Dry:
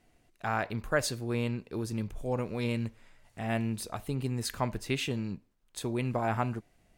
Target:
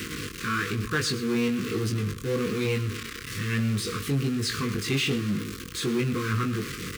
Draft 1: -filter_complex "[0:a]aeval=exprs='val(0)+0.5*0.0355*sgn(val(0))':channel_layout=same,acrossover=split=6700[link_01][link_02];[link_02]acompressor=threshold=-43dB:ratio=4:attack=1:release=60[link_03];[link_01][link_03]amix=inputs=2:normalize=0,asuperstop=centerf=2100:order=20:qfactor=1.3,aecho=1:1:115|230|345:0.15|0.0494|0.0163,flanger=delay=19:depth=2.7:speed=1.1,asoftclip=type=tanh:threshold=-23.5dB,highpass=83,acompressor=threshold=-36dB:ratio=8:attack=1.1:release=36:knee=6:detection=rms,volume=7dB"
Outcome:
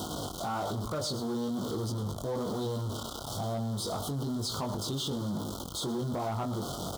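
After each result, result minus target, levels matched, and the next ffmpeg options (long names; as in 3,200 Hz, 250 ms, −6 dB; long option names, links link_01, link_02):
2,000 Hz band −13.5 dB; downward compressor: peak gain reduction +10.5 dB
-filter_complex "[0:a]aeval=exprs='val(0)+0.5*0.0355*sgn(val(0))':channel_layout=same,acrossover=split=6700[link_01][link_02];[link_02]acompressor=threshold=-43dB:ratio=4:attack=1:release=60[link_03];[link_01][link_03]amix=inputs=2:normalize=0,asuperstop=centerf=730:order=20:qfactor=1.3,aecho=1:1:115|230|345:0.15|0.0494|0.0163,flanger=delay=19:depth=2.7:speed=1.1,asoftclip=type=tanh:threshold=-23.5dB,highpass=83,acompressor=threshold=-36dB:ratio=8:attack=1.1:release=36:knee=6:detection=rms,volume=7dB"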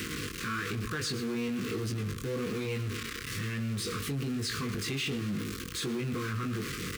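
downward compressor: peak gain reduction +10 dB
-filter_complex "[0:a]aeval=exprs='val(0)+0.5*0.0355*sgn(val(0))':channel_layout=same,acrossover=split=6700[link_01][link_02];[link_02]acompressor=threshold=-43dB:ratio=4:attack=1:release=60[link_03];[link_01][link_03]amix=inputs=2:normalize=0,asuperstop=centerf=730:order=20:qfactor=1.3,aecho=1:1:115|230|345:0.15|0.0494|0.0163,flanger=delay=19:depth=2.7:speed=1.1,asoftclip=type=tanh:threshold=-23.5dB,highpass=83,volume=7dB"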